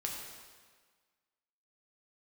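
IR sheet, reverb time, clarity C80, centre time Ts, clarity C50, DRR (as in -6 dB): 1.6 s, 3.5 dB, 69 ms, 2.0 dB, -1.5 dB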